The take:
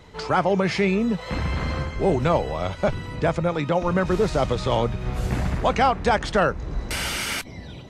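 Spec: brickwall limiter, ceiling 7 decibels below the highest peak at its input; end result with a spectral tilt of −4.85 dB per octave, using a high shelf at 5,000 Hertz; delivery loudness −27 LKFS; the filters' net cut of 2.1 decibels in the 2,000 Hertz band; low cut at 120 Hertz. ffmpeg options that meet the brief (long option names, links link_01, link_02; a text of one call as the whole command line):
ffmpeg -i in.wav -af "highpass=120,equalizer=frequency=2000:width_type=o:gain=-3.5,highshelf=frequency=5000:gain=4.5,volume=-0.5dB,alimiter=limit=-15dB:level=0:latency=1" out.wav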